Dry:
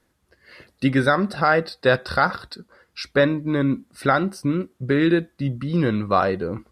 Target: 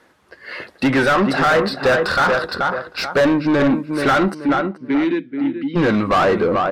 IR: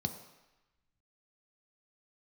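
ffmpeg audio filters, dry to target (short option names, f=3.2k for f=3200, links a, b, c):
-filter_complex "[0:a]asplit=3[a][b][c];[a]afade=t=out:st=4.33:d=0.02[d];[b]asplit=3[e][f][g];[e]bandpass=f=270:t=q:w=8,volume=0dB[h];[f]bandpass=f=2.29k:t=q:w=8,volume=-6dB[i];[g]bandpass=f=3.01k:t=q:w=8,volume=-9dB[j];[h][i][j]amix=inputs=3:normalize=0,afade=t=in:st=4.33:d=0.02,afade=t=out:st=5.75:d=0.02[k];[c]afade=t=in:st=5.75:d=0.02[l];[d][k][l]amix=inputs=3:normalize=0,asplit=2[m][n];[n]adelay=431,lowpass=f=1.7k:p=1,volume=-10dB,asplit=2[o][p];[p]adelay=431,lowpass=f=1.7k:p=1,volume=0.24,asplit=2[q][r];[r]adelay=431,lowpass=f=1.7k:p=1,volume=0.24[s];[m][o][q][s]amix=inputs=4:normalize=0,asplit=2[t][u];[u]highpass=f=720:p=1,volume=29dB,asoftclip=type=tanh:threshold=-3.5dB[v];[t][v]amix=inputs=2:normalize=0,lowpass=f=1.7k:p=1,volume=-6dB,volume=-3dB"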